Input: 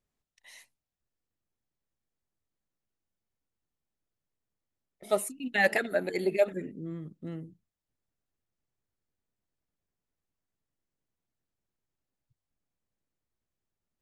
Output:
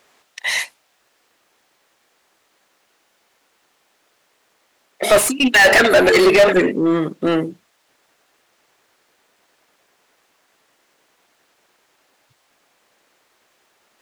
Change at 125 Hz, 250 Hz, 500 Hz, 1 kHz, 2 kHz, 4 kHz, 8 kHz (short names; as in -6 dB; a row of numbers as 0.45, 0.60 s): +12.0, +19.0, +15.5, +16.5, +17.0, +23.0, +19.5 dB